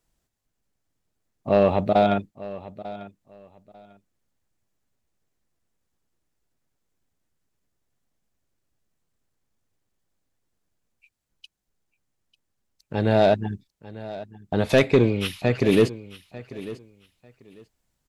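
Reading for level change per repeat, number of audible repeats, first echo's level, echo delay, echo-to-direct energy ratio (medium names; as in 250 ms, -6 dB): -14.0 dB, 2, -17.0 dB, 895 ms, -17.0 dB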